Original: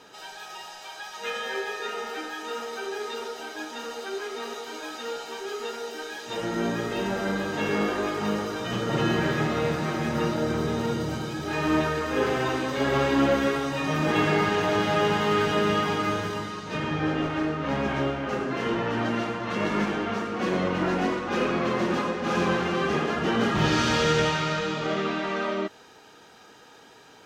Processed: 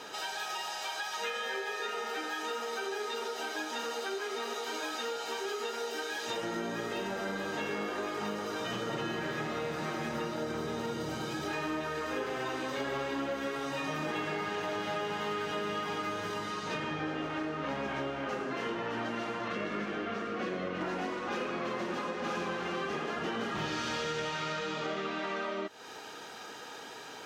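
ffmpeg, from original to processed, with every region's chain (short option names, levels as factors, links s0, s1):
-filter_complex "[0:a]asettb=1/sr,asplit=3[s0][s1][s2];[s0]atrim=end=19.484[s3];[s1]atrim=start=19.48:end=20.81,asetpts=PTS-STARTPTS,afade=t=in:d=0.004:c=qsin,afade=t=out:st=1.326:d=0.004:c=qsin,lowpass=f=3700:p=1,equalizer=f=900:t=o:w=0.23:g=-12.5[s4];[s2]atrim=start=20.806[s5];[s3][s4]acrossfade=d=0.004:c1=hsin:c2=qsin[s6];[s6][s5]acrossfade=d=0.004:c1=qsin:c2=hsin,lowshelf=f=190:g=-10.5,acompressor=threshold=0.01:ratio=6,volume=2.11"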